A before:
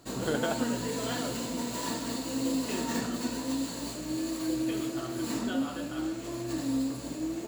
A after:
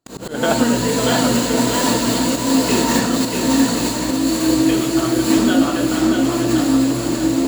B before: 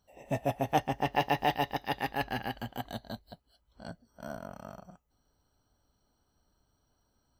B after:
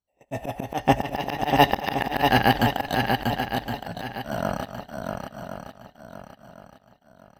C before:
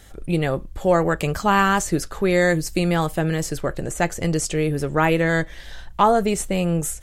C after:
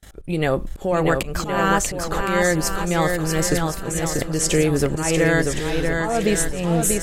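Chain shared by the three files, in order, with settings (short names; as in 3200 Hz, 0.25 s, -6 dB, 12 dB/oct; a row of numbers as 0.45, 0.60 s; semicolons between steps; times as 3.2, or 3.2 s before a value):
gate -46 dBFS, range -36 dB; dynamic EQ 140 Hz, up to -4 dB, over -40 dBFS, Q 3.4; compressor 6:1, threshold -23 dBFS; auto swell 0.227 s; on a send: swung echo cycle 1.065 s, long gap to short 1.5:1, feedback 31%, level -4.5 dB; on the sum: normalise peaks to -3 dBFS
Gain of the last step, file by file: +15.0, +17.5, +8.5 dB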